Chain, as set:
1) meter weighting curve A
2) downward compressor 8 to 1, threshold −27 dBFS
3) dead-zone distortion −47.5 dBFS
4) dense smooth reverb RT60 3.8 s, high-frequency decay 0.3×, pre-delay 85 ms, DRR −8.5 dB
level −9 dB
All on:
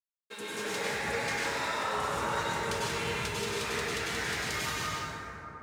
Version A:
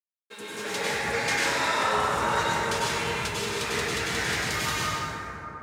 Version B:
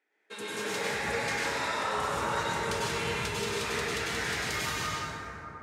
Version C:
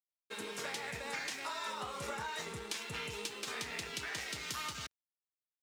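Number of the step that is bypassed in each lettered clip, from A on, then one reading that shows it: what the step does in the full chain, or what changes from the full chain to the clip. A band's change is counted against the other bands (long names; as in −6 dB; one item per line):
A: 2, average gain reduction 4.0 dB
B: 3, distortion level −20 dB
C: 4, change in crest factor +5.0 dB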